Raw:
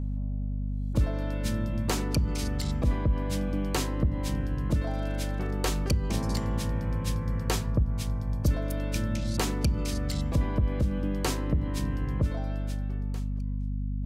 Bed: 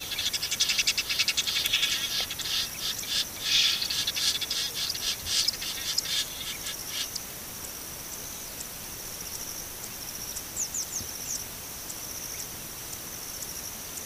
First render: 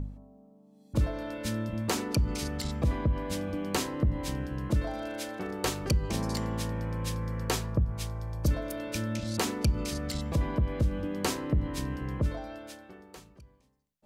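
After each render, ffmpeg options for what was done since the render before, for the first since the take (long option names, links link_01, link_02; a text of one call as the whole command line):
ffmpeg -i in.wav -af "bandreject=frequency=50:width_type=h:width=4,bandreject=frequency=100:width_type=h:width=4,bandreject=frequency=150:width_type=h:width=4,bandreject=frequency=200:width_type=h:width=4,bandreject=frequency=250:width_type=h:width=4" out.wav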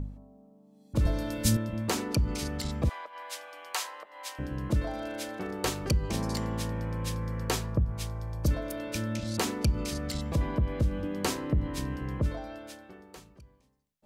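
ffmpeg -i in.wav -filter_complex "[0:a]asettb=1/sr,asplit=3[link_01][link_02][link_03];[link_01]atrim=end=1.054[link_04];[link_02]atrim=start=1.05:end=1.57,asetpts=PTS-STARTPTS,afade=type=in:duration=0.004:curve=qsin,afade=type=out:start_time=0.516:duration=0.004:curve=qsin,bass=frequency=250:gain=11,treble=frequency=4000:gain=13[link_05];[link_03]atrim=start=1.566[link_06];[link_04][link_05]acrossfade=duration=0.004:curve1=hsin:curve2=qsin[link_07];[link_07][link_06]acrossfade=duration=0.004:curve1=qsin:curve2=hsin,asettb=1/sr,asplit=3[link_08][link_09][link_10];[link_08]atrim=end=2.894[link_11];[link_09]atrim=start=2.89:end=4.39,asetpts=PTS-STARTPTS,afade=type=in:duration=0.004:curve=qsin,afade=type=out:start_time=1.496:duration=0.004:curve=qsin,highpass=frequency=730:width=0.5412,highpass=frequency=730:width=1.3066[link_12];[link_10]atrim=start=4.386[link_13];[link_11][link_12]acrossfade=duration=0.004:curve1=hsin:curve2=qsin[link_14];[link_14][link_13]acrossfade=duration=0.004:curve1=qsin:curve2=hsin" out.wav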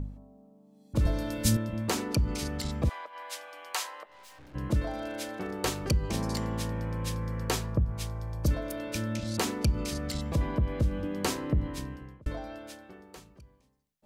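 ffmpeg -i in.wav -filter_complex "[0:a]asplit=3[link_01][link_02][link_03];[link_01]afade=type=out:start_time=4.05:duration=0.02[link_04];[link_02]aeval=exprs='(tanh(355*val(0)+0.5)-tanh(0.5))/355':channel_layout=same,afade=type=in:start_time=4.05:duration=0.02,afade=type=out:start_time=4.54:duration=0.02[link_05];[link_03]afade=type=in:start_time=4.54:duration=0.02[link_06];[link_04][link_05][link_06]amix=inputs=3:normalize=0,asplit=2[link_07][link_08];[link_07]atrim=end=12.26,asetpts=PTS-STARTPTS,afade=type=out:start_time=11.58:duration=0.68[link_09];[link_08]atrim=start=12.26,asetpts=PTS-STARTPTS,afade=type=in:duration=0.004:curve=hsin[link_10];[link_09][link_10]concat=n=2:v=0:a=1" out.wav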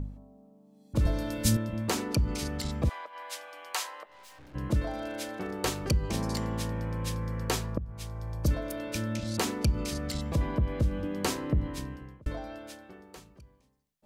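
ffmpeg -i in.wav -filter_complex "[0:a]asplit=2[link_01][link_02];[link_01]atrim=end=7.78,asetpts=PTS-STARTPTS,afade=type=out:start_time=7.776:duration=0.004:curve=hsin:silence=0.211349[link_03];[link_02]atrim=start=7.78,asetpts=PTS-STARTPTS,afade=type=in:duration=0.52:silence=0.211349[link_04];[link_03][link_04]concat=n=2:v=0:a=1" out.wav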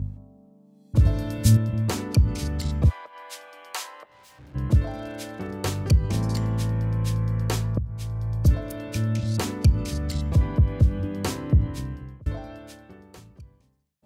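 ffmpeg -i in.wav -af "highpass=50,equalizer=frequency=94:width_type=o:width=1.6:gain=12.5" out.wav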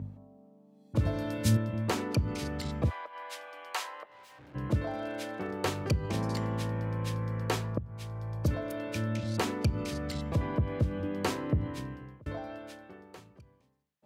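ffmpeg -i in.wav -af "highpass=88,bass=frequency=250:gain=-8,treble=frequency=4000:gain=-8" out.wav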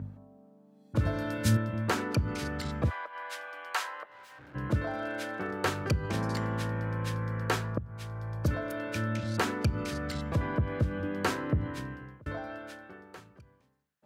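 ffmpeg -i in.wav -af "equalizer=frequency=1500:width=2.4:gain=8.5" out.wav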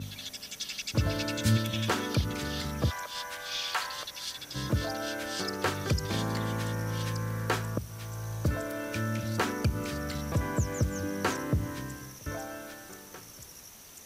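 ffmpeg -i in.wav -i bed.wav -filter_complex "[1:a]volume=-12dB[link_01];[0:a][link_01]amix=inputs=2:normalize=0" out.wav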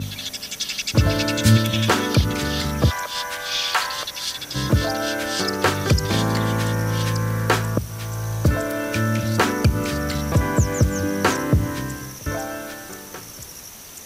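ffmpeg -i in.wav -af "volume=10.5dB" out.wav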